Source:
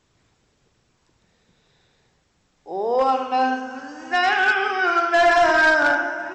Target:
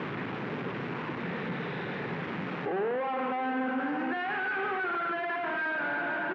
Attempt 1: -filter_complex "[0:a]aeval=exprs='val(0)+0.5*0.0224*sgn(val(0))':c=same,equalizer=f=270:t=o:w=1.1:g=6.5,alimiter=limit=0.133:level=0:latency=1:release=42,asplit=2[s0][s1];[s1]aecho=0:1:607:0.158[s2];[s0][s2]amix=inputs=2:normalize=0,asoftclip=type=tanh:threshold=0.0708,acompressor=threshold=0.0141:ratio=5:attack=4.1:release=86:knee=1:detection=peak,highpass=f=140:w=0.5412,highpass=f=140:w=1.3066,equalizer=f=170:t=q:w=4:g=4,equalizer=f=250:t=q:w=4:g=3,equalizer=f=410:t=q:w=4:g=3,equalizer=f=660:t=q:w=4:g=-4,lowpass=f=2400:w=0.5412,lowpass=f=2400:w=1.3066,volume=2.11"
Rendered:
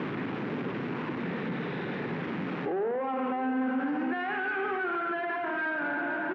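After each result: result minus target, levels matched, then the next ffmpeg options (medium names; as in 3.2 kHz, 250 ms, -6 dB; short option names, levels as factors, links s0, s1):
saturation: distortion -7 dB; 250 Hz band +3.0 dB
-filter_complex "[0:a]aeval=exprs='val(0)+0.5*0.0224*sgn(val(0))':c=same,equalizer=f=270:t=o:w=1.1:g=6.5,alimiter=limit=0.133:level=0:latency=1:release=42,asplit=2[s0][s1];[s1]aecho=0:1:607:0.158[s2];[s0][s2]amix=inputs=2:normalize=0,asoftclip=type=tanh:threshold=0.0316,acompressor=threshold=0.0141:ratio=5:attack=4.1:release=86:knee=1:detection=peak,highpass=f=140:w=0.5412,highpass=f=140:w=1.3066,equalizer=f=170:t=q:w=4:g=4,equalizer=f=250:t=q:w=4:g=3,equalizer=f=410:t=q:w=4:g=3,equalizer=f=660:t=q:w=4:g=-4,lowpass=f=2400:w=0.5412,lowpass=f=2400:w=1.3066,volume=2.11"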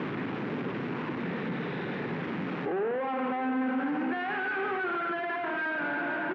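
250 Hz band +2.5 dB
-filter_complex "[0:a]aeval=exprs='val(0)+0.5*0.0224*sgn(val(0))':c=same,alimiter=limit=0.133:level=0:latency=1:release=42,asplit=2[s0][s1];[s1]aecho=0:1:607:0.158[s2];[s0][s2]amix=inputs=2:normalize=0,asoftclip=type=tanh:threshold=0.0316,acompressor=threshold=0.0141:ratio=5:attack=4.1:release=86:knee=1:detection=peak,highpass=f=140:w=0.5412,highpass=f=140:w=1.3066,equalizer=f=170:t=q:w=4:g=4,equalizer=f=250:t=q:w=4:g=3,equalizer=f=410:t=q:w=4:g=3,equalizer=f=660:t=q:w=4:g=-4,lowpass=f=2400:w=0.5412,lowpass=f=2400:w=1.3066,volume=2.11"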